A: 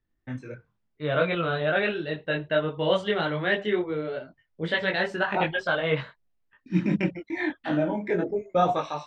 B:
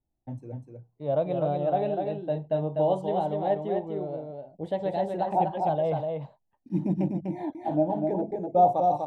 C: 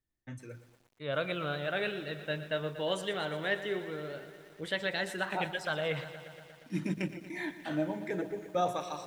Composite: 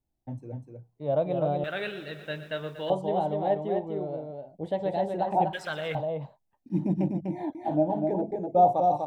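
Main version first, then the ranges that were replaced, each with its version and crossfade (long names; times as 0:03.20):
B
0:01.64–0:02.90: punch in from C
0:05.53–0:05.95: punch in from C
not used: A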